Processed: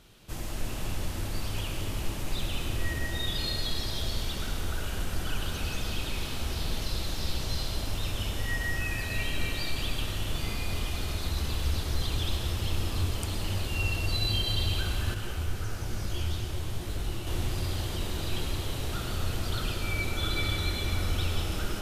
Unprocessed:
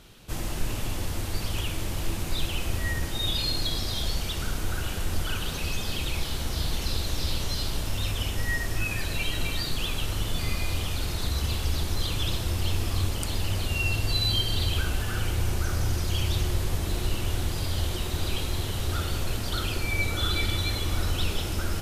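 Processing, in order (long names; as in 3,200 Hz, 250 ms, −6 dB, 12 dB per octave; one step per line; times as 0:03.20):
comb and all-pass reverb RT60 4.8 s, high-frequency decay 0.5×, pre-delay 65 ms, DRR 1 dB
0:15.14–0:17.27: micro pitch shift up and down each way 38 cents
level −5 dB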